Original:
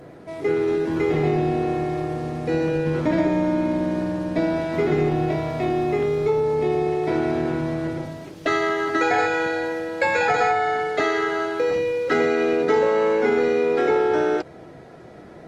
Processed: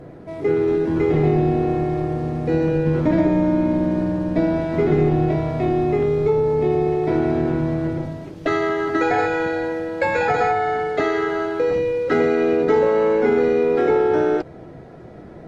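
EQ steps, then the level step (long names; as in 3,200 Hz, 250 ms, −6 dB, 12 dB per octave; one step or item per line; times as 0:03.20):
spectral tilt −2 dB per octave
0.0 dB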